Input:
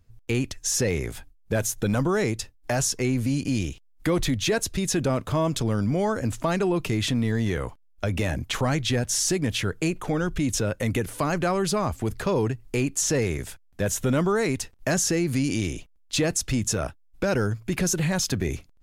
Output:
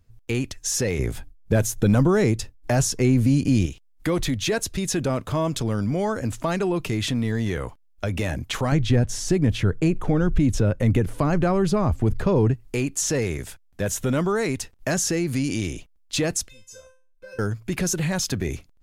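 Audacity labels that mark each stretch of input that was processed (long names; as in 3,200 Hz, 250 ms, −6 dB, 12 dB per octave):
0.990000	3.660000	low-shelf EQ 480 Hz +7.5 dB
8.720000	12.540000	spectral tilt −2.5 dB per octave
16.480000	17.390000	tuned comb filter 520 Hz, decay 0.35 s, mix 100%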